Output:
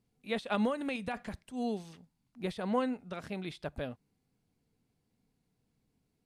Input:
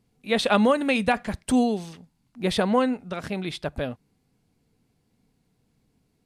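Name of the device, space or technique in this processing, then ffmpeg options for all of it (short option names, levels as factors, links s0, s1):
de-esser from a sidechain: -filter_complex "[0:a]asplit=2[s0][s1];[s1]highpass=f=6700:w=0.5412,highpass=f=6700:w=1.3066,apad=whole_len=275745[s2];[s0][s2]sidechaincompress=threshold=0.00355:ratio=5:attack=3:release=98,volume=0.355"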